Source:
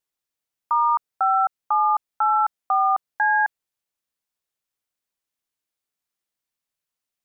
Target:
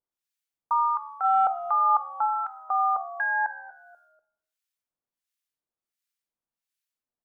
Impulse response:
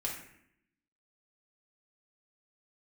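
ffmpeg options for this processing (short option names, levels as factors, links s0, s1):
-filter_complex "[0:a]acrossover=split=1300[s0][s1];[s0]aeval=exprs='val(0)*(1-1/2+1/2*cos(2*PI*1.4*n/s))':c=same[s2];[s1]aeval=exprs='val(0)*(1-1/2-1/2*cos(2*PI*1.4*n/s))':c=same[s3];[s2][s3]amix=inputs=2:normalize=0,asplit=3[s4][s5][s6];[s4]afade=t=out:st=1.23:d=0.02[s7];[s5]acontrast=40,afade=t=in:st=1.23:d=0.02,afade=t=out:st=2.08:d=0.02[s8];[s6]afade=t=in:st=2.08:d=0.02[s9];[s7][s8][s9]amix=inputs=3:normalize=0,asplit=4[s10][s11][s12][s13];[s11]adelay=243,afreqshift=-75,volume=0.126[s14];[s12]adelay=486,afreqshift=-150,volume=0.0403[s15];[s13]adelay=729,afreqshift=-225,volume=0.0129[s16];[s10][s14][s15][s16]amix=inputs=4:normalize=0,asplit=2[s17][s18];[1:a]atrim=start_sample=2205[s19];[s18][s19]afir=irnorm=-1:irlink=0,volume=0.316[s20];[s17][s20]amix=inputs=2:normalize=0,volume=0.75"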